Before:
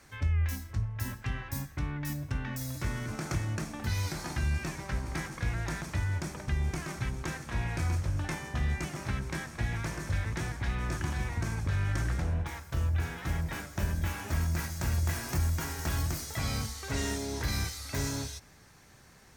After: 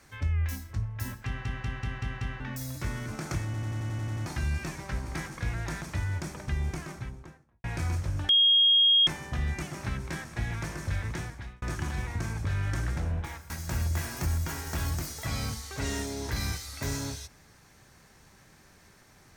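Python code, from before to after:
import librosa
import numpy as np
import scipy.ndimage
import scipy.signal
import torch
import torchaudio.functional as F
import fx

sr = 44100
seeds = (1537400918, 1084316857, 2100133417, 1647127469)

y = fx.studio_fade_out(x, sr, start_s=6.59, length_s=1.05)
y = fx.edit(y, sr, fx.stutter_over(start_s=1.26, slice_s=0.19, count=6),
    fx.stutter_over(start_s=3.45, slice_s=0.09, count=9),
    fx.insert_tone(at_s=8.29, length_s=0.78, hz=3260.0, db=-17.5),
    fx.fade_out_span(start_s=10.35, length_s=0.49),
    fx.cut(start_s=12.72, length_s=1.9), tone=tone)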